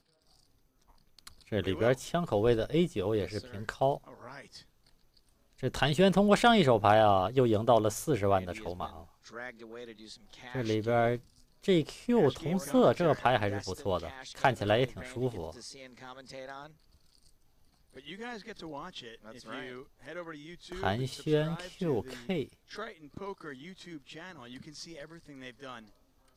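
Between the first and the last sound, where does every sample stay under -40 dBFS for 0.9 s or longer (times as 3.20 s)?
4.58–5.61 s
16.67–17.97 s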